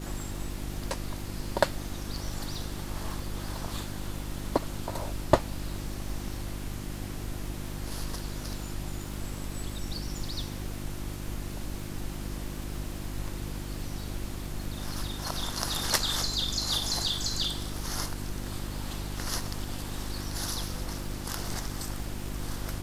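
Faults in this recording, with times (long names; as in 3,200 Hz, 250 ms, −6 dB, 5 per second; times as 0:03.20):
surface crackle 130 per second −39 dBFS
mains hum 50 Hz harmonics 7 −38 dBFS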